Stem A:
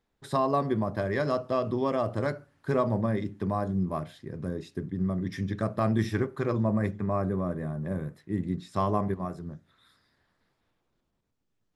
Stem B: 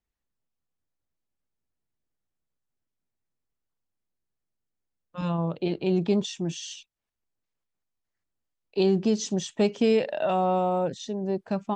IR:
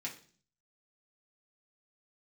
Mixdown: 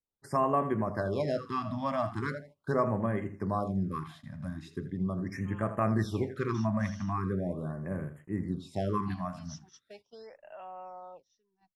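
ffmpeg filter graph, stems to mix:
-filter_complex "[0:a]volume=-3.5dB,asplit=2[link_01][link_02];[link_02]volume=-12dB[link_03];[1:a]lowpass=frequency=5600:width_type=q:width=14,acrossover=split=590 2200:gain=0.1 1 0.178[link_04][link_05][link_06];[link_04][link_05][link_06]amix=inputs=3:normalize=0,adelay=300,volume=-17dB,asplit=2[link_07][link_08];[link_08]volume=-23dB[link_09];[2:a]atrim=start_sample=2205[link_10];[link_09][link_10]afir=irnorm=-1:irlink=0[link_11];[link_03]aecho=0:1:82|164|246|328:1|0.25|0.0625|0.0156[link_12];[link_01][link_07][link_11][link_12]amix=inputs=4:normalize=0,agate=range=-16dB:threshold=-52dB:ratio=16:detection=peak,adynamicequalizer=threshold=0.00501:dfrequency=1400:dqfactor=0.84:tfrequency=1400:tqfactor=0.84:attack=5:release=100:ratio=0.375:range=2:mode=boostabove:tftype=bell,afftfilt=real='re*(1-between(b*sr/1024,380*pow(4800/380,0.5+0.5*sin(2*PI*0.4*pts/sr))/1.41,380*pow(4800/380,0.5+0.5*sin(2*PI*0.4*pts/sr))*1.41))':imag='im*(1-between(b*sr/1024,380*pow(4800/380,0.5+0.5*sin(2*PI*0.4*pts/sr))/1.41,380*pow(4800/380,0.5+0.5*sin(2*PI*0.4*pts/sr))*1.41))':win_size=1024:overlap=0.75"

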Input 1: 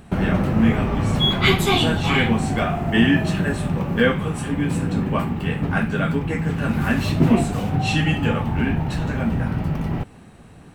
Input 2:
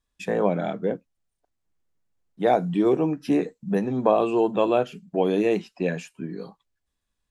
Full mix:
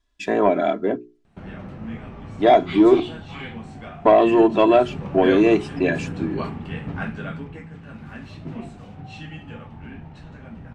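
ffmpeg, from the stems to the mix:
ffmpeg -i stem1.wav -i stem2.wav -filter_complex "[0:a]adelay=1250,volume=-7dB,afade=type=in:start_time=4.68:duration=0.42:silence=0.354813,afade=type=out:start_time=7.01:duration=0.7:silence=0.316228[link_01];[1:a]aecho=1:1:3:0.79,acontrast=83,volume=-2dB,asplit=3[link_02][link_03][link_04];[link_02]atrim=end=3,asetpts=PTS-STARTPTS,afade=type=out:start_time=2.996:duration=0.004:curve=hsin[link_05];[link_03]atrim=start=3:end=4.05,asetpts=PTS-STARTPTS,volume=0[link_06];[link_04]atrim=start=4.05,asetpts=PTS-STARTPTS,afade=type=in:duration=0.004:curve=hsin[link_07];[link_05][link_06][link_07]concat=n=3:v=0:a=1[link_08];[link_01][link_08]amix=inputs=2:normalize=0,lowpass=5900,bandreject=frequency=60:width_type=h:width=6,bandreject=frequency=120:width_type=h:width=6,bandreject=frequency=180:width_type=h:width=6,bandreject=frequency=240:width_type=h:width=6,bandreject=frequency=300:width_type=h:width=6,bandreject=frequency=360:width_type=h:width=6,bandreject=frequency=420:width_type=h:width=6" out.wav

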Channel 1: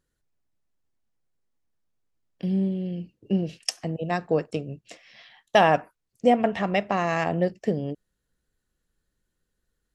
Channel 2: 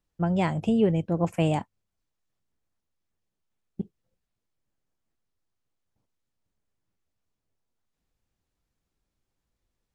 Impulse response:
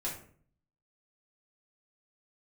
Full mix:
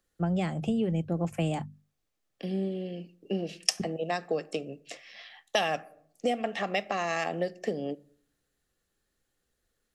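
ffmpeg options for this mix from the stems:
-filter_complex "[0:a]highpass=330,bandreject=frequency=1500:width=20,volume=2dB,asplit=2[link_01][link_02];[link_02]volume=-19.5dB[link_03];[1:a]bandreject=frequency=50:width_type=h:width=6,bandreject=frequency=100:width_type=h:width=6,bandreject=frequency=150:width_type=h:width=6,bandreject=frequency=200:width_type=h:width=6,bandreject=frequency=250:width_type=h:width=6,acrossover=split=370[link_04][link_05];[link_05]acompressor=threshold=-23dB:ratio=6[link_06];[link_04][link_06]amix=inputs=2:normalize=0,volume=-1dB[link_07];[2:a]atrim=start_sample=2205[link_08];[link_03][link_08]afir=irnorm=-1:irlink=0[link_09];[link_01][link_07][link_09]amix=inputs=3:normalize=0,acrossover=split=160|3000[link_10][link_11][link_12];[link_11]acompressor=threshold=-28dB:ratio=4[link_13];[link_10][link_13][link_12]amix=inputs=3:normalize=0,asuperstop=centerf=960:order=4:qfactor=7.4"

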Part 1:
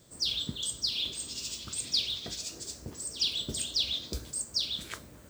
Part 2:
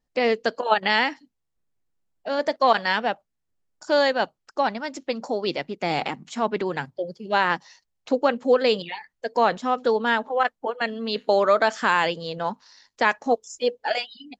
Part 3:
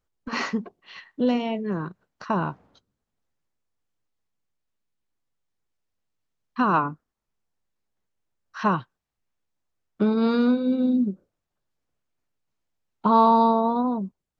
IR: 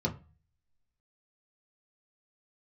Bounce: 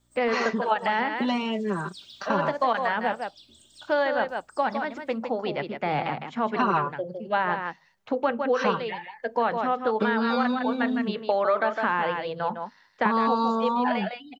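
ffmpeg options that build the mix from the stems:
-filter_complex "[0:a]aecho=1:1:3.2:0.83,aeval=exprs='val(0)+0.00447*(sin(2*PI*60*n/s)+sin(2*PI*2*60*n/s)/2+sin(2*PI*3*60*n/s)/3+sin(2*PI*4*60*n/s)/4+sin(2*PI*5*60*n/s)/5)':channel_layout=same,volume=-14dB,asplit=3[link_01][link_02][link_03];[link_02]volume=-17dB[link_04];[link_03]volume=-13dB[link_05];[1:a]lowpass=2100,equalizer=frequency=91:width=1.2:gain=12.5,volume=2.5dB,asplit=4[link_06][link_07][link_08][link_09];[link_07]volume=-19.5dB[link_10];[link_08]volume=-8.5dB[link_11];[2:a]aecho=1:1:5.1:0.95,volume=3dB[link_12];[link_09]apad=whole_len=233721[link_13];[link_01][link_13]sidechaincompress=threshold=-35dB:ratio=8:attack=33:release=842[link_14];[3:a]atrim=start_sample=2205[link_15];[link_04][link_10]amix=inputs=2:normalize=0[link_16];[link_16][link_15]afir=irnorm=-1:irlink=0[link_17];[link_05][link_11]amix=inputs=2:normalize=0,aecho=0:1:157:1[link_18];[link_14][link_06][link_12][link_17][link_18]amix=inputs=5:normalize=0,lowshelf=frequency=300:gain=-11.5,acrossover=split=760|1700[link_19][link_20][link_21];[link_19]acompressor=threshold=-24dB:ratio=4[link_22];[link_20]acompressor=threshold=-29dB:ratio=4[link_23];[link_21]acompressor=threshold=-34dB:ratio=4[link_24];[link_22][link_23][link_24]amix=inputs=3:normalize=0"

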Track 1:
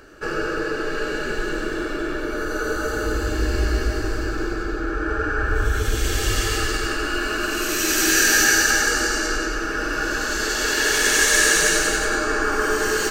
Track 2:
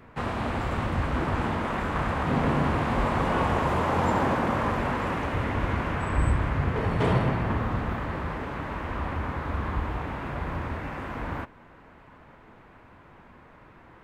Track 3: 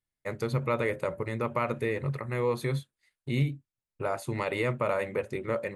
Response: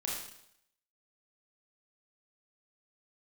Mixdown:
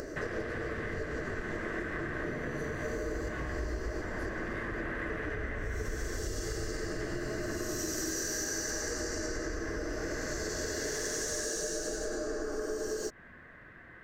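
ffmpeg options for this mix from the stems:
-filter_complex "[0:a]firequalizer=gain_entry='entry(100,0);entry(640,6);entry(1700,-22);entry(5600,2);entry(9200,-6)':delay=0.05:min_phase=1,acompressor=mode=upward:threshold=-24dB:ratio=2.5,volume=-7dB[link_01];[1:a]acompressor=threshold=-31dB:ratio=6,volume=-3.5dB[link_02];[2:a]bandreject=frequency=2300:width=25,alimiter=limit=-21.5dB:level=0:latency=1:release=36,volume=-16.5dB,asplit=2[link_03][link_04];[link_04]apad=whole_len=582348[link_05];[link_01][link_05]sidechaincompress=threshold=-51dB:ratio=12:attack=16:release=258[link_06];[link_06][link_02][link_03]amix=inputs=3:normalize=0,superequalizer=9b=0.398:11b=3.55,acompressor=threshold=-32dB:ratio=6"

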